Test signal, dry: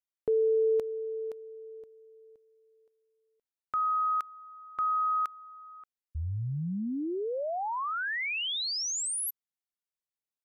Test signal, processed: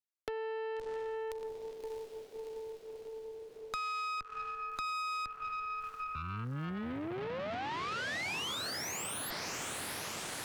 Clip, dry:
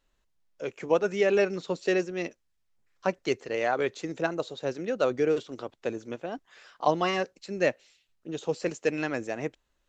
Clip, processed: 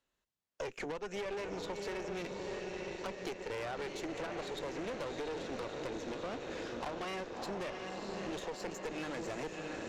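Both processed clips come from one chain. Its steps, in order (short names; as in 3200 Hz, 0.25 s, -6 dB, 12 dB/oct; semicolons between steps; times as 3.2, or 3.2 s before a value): gate -57 dBFS, range -27 dB; HPF 120 Hz 6 dB/oct; compressor 16:1, threshold -32 dBFS; diffused feedback echo 0.663 s, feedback 65%, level -7 dB; one-sided clip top -37.5 dBFS; tube stage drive 39 dB, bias 0.7; three-band squash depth 70%; gain +3.5 dB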